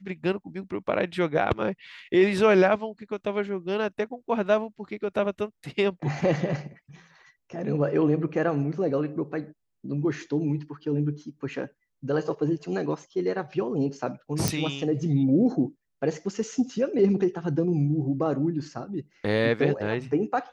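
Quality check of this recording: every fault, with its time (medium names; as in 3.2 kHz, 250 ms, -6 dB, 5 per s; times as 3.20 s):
14.48 s: pop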